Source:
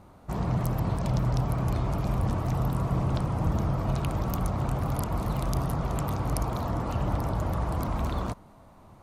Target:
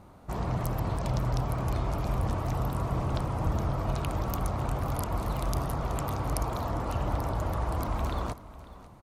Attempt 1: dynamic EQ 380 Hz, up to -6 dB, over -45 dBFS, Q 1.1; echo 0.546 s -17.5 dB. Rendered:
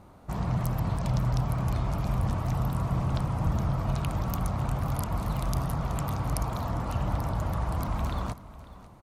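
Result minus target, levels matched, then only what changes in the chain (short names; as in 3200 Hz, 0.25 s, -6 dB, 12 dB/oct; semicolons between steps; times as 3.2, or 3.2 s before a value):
500 Hz band -4.5 dB
change: dynamic EQ 170 Hz, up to -6 dB, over -45 dBFS, Q 1.1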